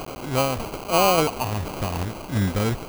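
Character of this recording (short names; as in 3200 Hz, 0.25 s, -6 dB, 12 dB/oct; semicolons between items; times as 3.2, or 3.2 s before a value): a quantiser's noise floor 6-bit, dither triangular; tremolo saw down 1.7 Hz, depth 35%; aliases and images of a low sample rate 1800 Hz, jitter 0%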